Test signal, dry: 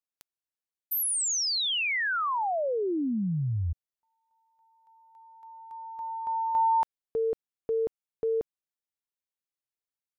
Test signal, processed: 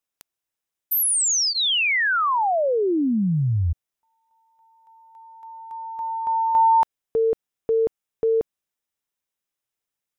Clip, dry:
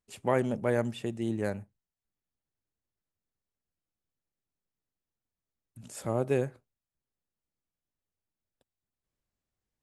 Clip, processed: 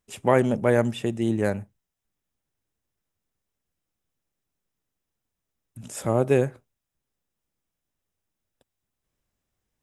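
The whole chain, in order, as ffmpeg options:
ffmpeg -i in.wav -af "bandreject=frequency=4400:width=9.1,volume=7.5dB" out.wav

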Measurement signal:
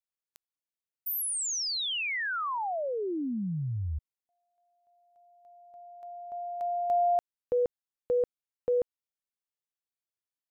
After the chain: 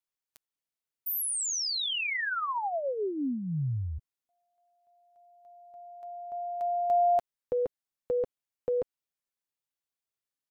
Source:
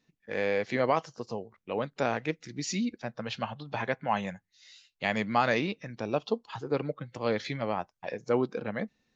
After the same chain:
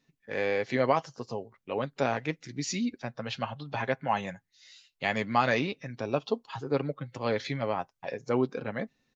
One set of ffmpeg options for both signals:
ffmpeg -i in.wav -af "aecho=1:1:7.4:0.35" out.wav

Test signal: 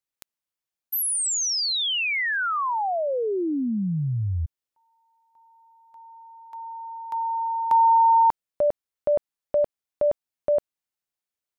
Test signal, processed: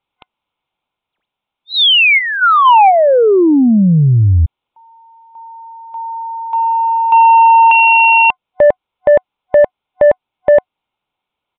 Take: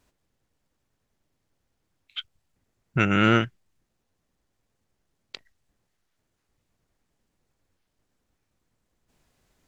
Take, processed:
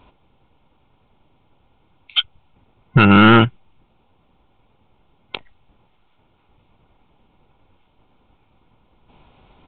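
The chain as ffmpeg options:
ffmpeg -i in.wav -filter_complex "[0:a]superequalizer=9b=2:11b=0.316,asplit=2[link_01][link_02];[link_02]alimiter=limit=-18.5dB:level=0:latency=1:release=181,volume=0.5dB[link_03];[link_01][link_03]amix=inputs=2:normalize=0,aeval=exprs='0.631*sin(PI/2*2.24*val(0)/0.631)':channel_layout=same,aresample=8000,aresample=44100" out.wav

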